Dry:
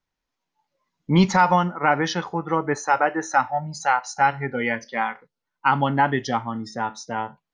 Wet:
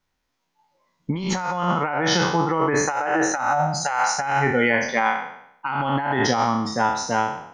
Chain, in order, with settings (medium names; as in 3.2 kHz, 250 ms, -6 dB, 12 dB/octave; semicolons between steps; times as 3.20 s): spectral sustain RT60 0.74 s; compressor with a negative ratio -23 dBFS, ratio -1; trim +1.5 dB